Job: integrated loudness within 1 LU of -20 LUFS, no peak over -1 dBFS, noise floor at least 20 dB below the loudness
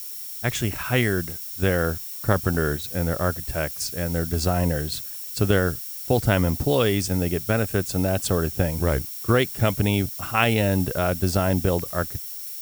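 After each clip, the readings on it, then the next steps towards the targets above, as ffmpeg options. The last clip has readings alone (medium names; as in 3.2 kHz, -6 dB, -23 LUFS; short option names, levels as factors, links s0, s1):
steady tone 5.5 kHz; tone level -47 dBFS; noise floor -35 dBFS; noise floor target -44 dBFS; loudness -23.5 LUFS; peak level -4.0 dBFS; loudness target -20.0 LUFS
-> -af "bandreject=f=5500:w=30"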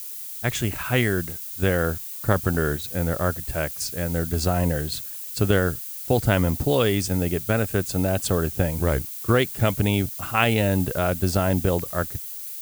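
steady tone not found; noise floor -35 dBFS; noise floor target -44 dBFS
-> -af "afftdn=nr=9:nf=-35"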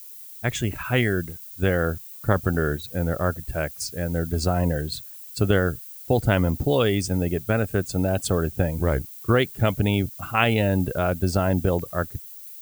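noise floor -41 dBFS; noise floor target -44 dBFS
-> -af "afftdn=nr=6:nf=-41"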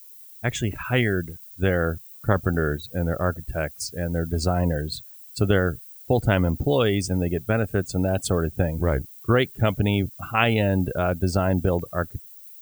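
noise floor -45 dBFS; loudness -24.5 LUFS; peak level -4.5 dBFS; loudness target -20.0 LUFS
-> -af "volume=1.68,alimiter=limit=0.891:level=0:latency=1"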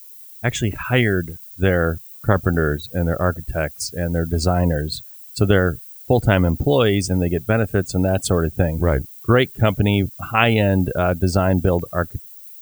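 loudness -20.0 LUFS; peak level -1.0 dBFS; noise floor -41 dBFS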